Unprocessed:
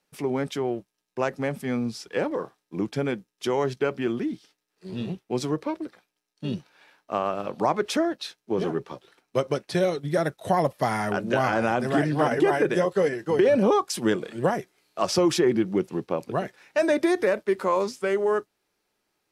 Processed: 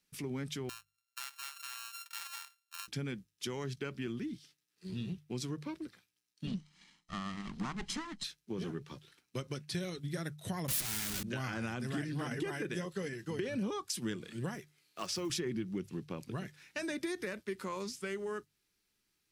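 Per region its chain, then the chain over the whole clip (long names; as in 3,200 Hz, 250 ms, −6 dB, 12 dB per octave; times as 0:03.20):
0:00.69–0:02.88: samples sorted by size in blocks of 32 samples + inverse Chebyshev high-pass filter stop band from 330 Hz, stop band 50 dB + downward compressor 2.5 to 1, threshold −35 dBFS
0:06.47–0:08.24: lower of the sound and its delayed copy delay 0.98 ms + low-pass filter 8,900 Hz 24 dB per octave + low shelf with overshoot 140 Hz −9.5 dB, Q 3
0:10.68–0:11.23: sign of each sample alone + high-shelf EQ 4,100 Hz +8 dB
0:14.55–0:15.30: one scale factor per block 7 bits + bass and treble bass −8 dB, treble −3 dB
whole clip: guitar amp tone stack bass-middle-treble 6-0-2; mains-hum notches 50/100/150 Hz; downward compressor 2 to 1, threshold −53 dBFS; level +14 dB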